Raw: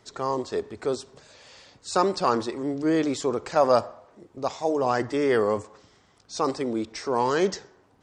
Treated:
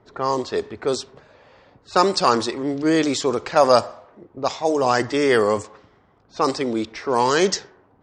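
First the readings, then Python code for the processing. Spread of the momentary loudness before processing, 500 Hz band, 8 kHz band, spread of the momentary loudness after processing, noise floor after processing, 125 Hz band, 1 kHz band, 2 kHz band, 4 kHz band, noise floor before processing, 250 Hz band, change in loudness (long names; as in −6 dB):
10 LU, +4.5 dB, +8.0 dB, 10 LU, −58 dBFS, +4.0 dB, +5.5 dB, +7.5 dB, +9.5 dB, −61 dBFS, +4.0 dB, +5.0 dB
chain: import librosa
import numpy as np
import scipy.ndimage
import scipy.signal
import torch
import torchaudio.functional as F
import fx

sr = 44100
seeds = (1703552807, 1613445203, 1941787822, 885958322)

y = fx.env_lowpass(x, sr, base_hz=970.0, full_db=-20.0)
y = fx.high_shelf(y, sr, hz=2100.0, db=9.0)
y = F.gain(torch.from_numpy(y), 4.0).numpy()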